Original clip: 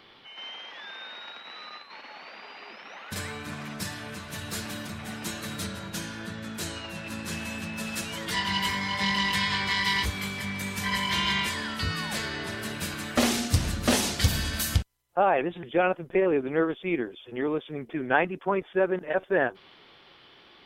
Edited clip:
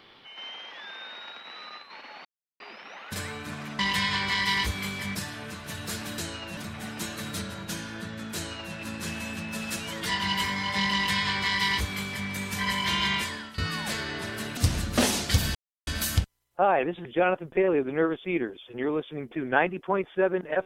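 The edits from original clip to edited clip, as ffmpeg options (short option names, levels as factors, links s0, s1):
-filter_complex "[0:a]asplit=10[s0][s1][s2][s3][s4][s5][s6][s7][s8][s9];[s0]atrim=end=2.25,asetpts=PTS-STARTPTS,afade=t=out:st=2.246:d=0.004:c=hsin[s10];[s1]atrim=start=2.25:end=2.6,asetpts=PTS-STARTPTS,volume=0[s11];[s2]atrim=start=2.6:end=3.792,asetpts=PTS-STARTPTS,afade=t=in:d=0.004:c=hsin[s12];[s3]atrim=start=9.178:end=10.542[s13];[s4]atrim=start=3.788:end=4.822[s14];[s5]atrim=start=6.598:end=6.992[s15];[s6]atrim=start=4.818:end=11.83,asetpts=PTS-STARTPTS,afade=t=out:st=6.622:d=0.39:silence=0.16788[s16];[s7]atrim=start=11.83:end=12.822,asetpts=PTS-STARTPTS,afade=t=in:d=0.004:c=hsin:silence=0.16788[s17];[s8]atrim=start=13.468:end=14.45,asetpts=PTS-STARTPTS,afade=t=out:st=0.978:d=0.004:c=hsin,apad=pad_dur=0.32[s18];[s9]atrim=start=14.45,asetpts=PTS-STARTPTS,afade=t=in:d=0.004:c=hsin[s19];[s10][s11][s12]concat=n=3:v=0:a=1[s20];[s20][s13]acrossfade=d=0.004:c1=hsin:c2=hsin[s21];[s21][s14]acrossfade=d=0.004:c1=hsin:c2=hsin[s22];[s22][s15]acrossfade=d=0.004:c1=hsin:c2=hsin[s23];[s16][s17]concat=n=2:v=0:a=1[s24];[s23][s24]acrossfade=d=0.004:c1=hsin:c2=hsin[s25];[s18][s19]concat=n=2:v=0:a=1[s26];[s25][s26]acrossfade=d=0.004:c1=hsin:c2=hsin"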